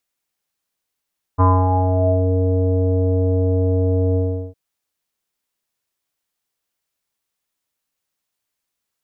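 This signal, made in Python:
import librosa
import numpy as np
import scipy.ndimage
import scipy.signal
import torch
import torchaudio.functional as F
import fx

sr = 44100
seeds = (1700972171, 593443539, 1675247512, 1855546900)

y = fx.sub_voice(sr, note=42, wave='square', cutoff_hz=550.0, q=7.0, env_oct=1.0, env_s=0.92, attack_ms=26.0, decay_s=0.28, sustain_db=-5, release_s=0.38, note_s=2.78, slope=24)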